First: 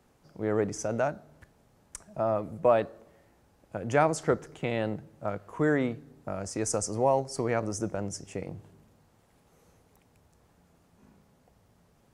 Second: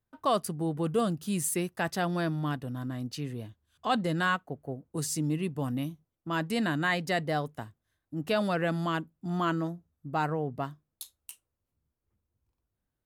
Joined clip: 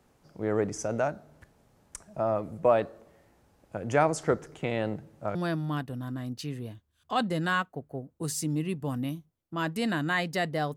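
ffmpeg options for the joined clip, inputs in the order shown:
ffmpeg -i cue0.wav -i cue1.wav -filter_complex "[0:a]apad=whole_dur=10.76,atrim=end=10.76,atrim=end=5.352[link_01];[1:a]atrim=start=2.088:end=7.5[link_02];[link_01][link_02]acrossfade=duration=0.004:curve1=hsin:curve2=hsin" out.wav

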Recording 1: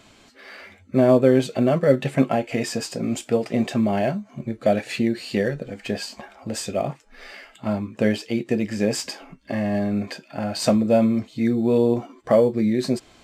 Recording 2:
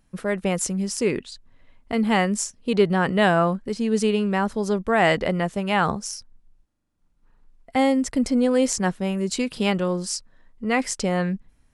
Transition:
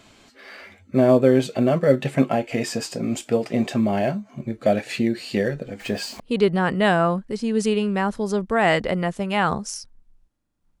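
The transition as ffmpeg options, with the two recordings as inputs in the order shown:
ffmpeg -i cue0.wav -i cue1.wav -filter_complex "[0:a]asettb=1/sr,asplit=3[link_01][link_02][link_03];[link_01]atrim=end=5.804[link_04];[link_02]atrim=start=5.8:end=6.2,asetpts=PTS-STARTPTS,afade=type=in:duration=0.004:curve=qsin,afade=type=out:start_time=0.396:duration=0.004:curve=qsin,aeval=exprs='val(0)+0.5*0.0112*sgn(val(0))':channel_layout=same[link_05];[link_03]atrim=start=6.196[link_06];[link_04][link_05]acrossfade=duration=0.004:curve1=hsin:curve2=qsin[link_07];[link_07][link_06]acrossfade=duration=0.004:curve1=qsin:curve2=hsin,apad=whole_dur=10.8,atrim=end=10.8,atrim=end=6.202[link_08];[1:a]atrim=start=2.568:end=7.17[link_09];[link_08][link_09]acrossfade=duration=0.004:curve1=hsin:curve2=hsin" out.wav

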